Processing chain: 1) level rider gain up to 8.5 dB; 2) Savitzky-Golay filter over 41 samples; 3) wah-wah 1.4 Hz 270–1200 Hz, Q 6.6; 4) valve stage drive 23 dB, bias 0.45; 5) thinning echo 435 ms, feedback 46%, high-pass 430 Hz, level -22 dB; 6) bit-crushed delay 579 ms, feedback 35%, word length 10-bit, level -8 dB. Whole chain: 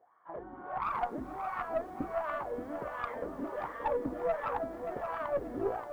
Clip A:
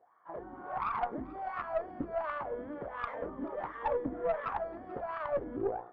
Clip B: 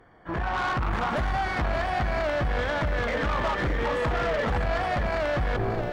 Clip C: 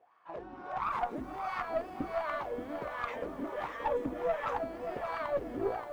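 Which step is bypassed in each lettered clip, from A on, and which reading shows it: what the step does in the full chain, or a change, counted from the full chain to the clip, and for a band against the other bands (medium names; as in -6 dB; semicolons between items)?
6, momentary loudness spread change +2 LU; 3, 125 Hz band +14.5 dB; 2, 2 kHz band +2.0 dB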